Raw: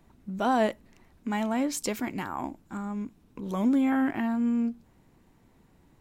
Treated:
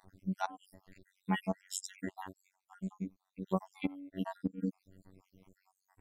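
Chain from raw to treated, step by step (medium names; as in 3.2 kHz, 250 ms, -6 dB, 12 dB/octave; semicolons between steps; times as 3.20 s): random holes in the spectrogram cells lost 74%; dynamic bell 1.4 kHz, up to -7 dB, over -53 dBFS, Q 2.1; inverted gate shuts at -21 dBFS, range -24 dB; robot voice 94.4 Hz; 1.61–3.82 s: upward expansion 1.5:1, over -48 dBFS; trim +4 dB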